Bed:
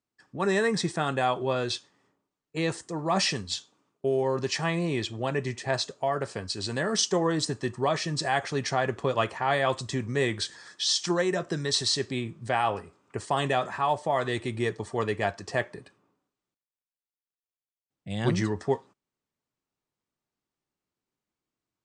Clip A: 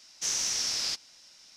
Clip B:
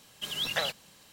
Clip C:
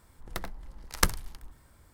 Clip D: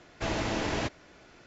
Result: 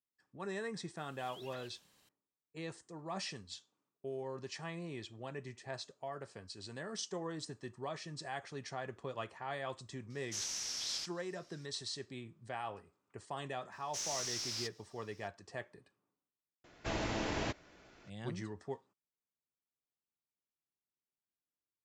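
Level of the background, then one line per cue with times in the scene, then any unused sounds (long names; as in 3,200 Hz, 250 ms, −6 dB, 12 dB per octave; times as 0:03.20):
bed −16 dB
0:00.97: mix in B −13 dB + downward compressor 2 to 1, threshold −48 dBFS
0:10.10: mix in A −10.5 dB
0:13.72: mix in A −13 dB + leveller curve on the samples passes 1
0:16.64: mix in D −6 dB
not used: C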